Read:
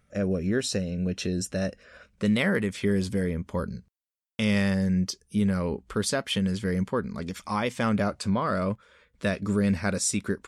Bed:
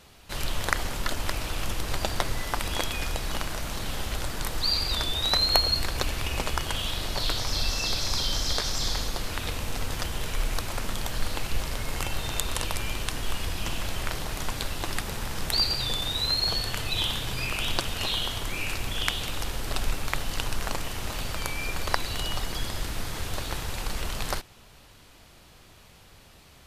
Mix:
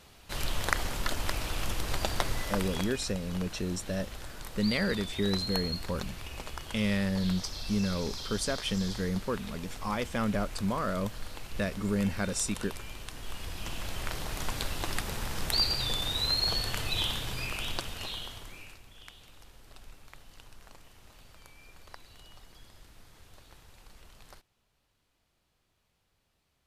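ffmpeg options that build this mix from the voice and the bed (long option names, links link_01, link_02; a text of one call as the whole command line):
ffmpeg -i stem1.wav -i stem2.wav -filter_complex "[0:a]adelay=2350,volume=-5dB[link_01];[1:a]volume=7dB,afade=type=out:start_time=2.41:duration=0.58:silence=0.334965,afade=type=in:start_time=13.12:duration=1.44:silence=0.334965,afade=type=out:start_time=16.88:duration=1.94:silence=0.0944061[link_02];[link_01][link_02]amix=inputs=2:normalize=0" out.wav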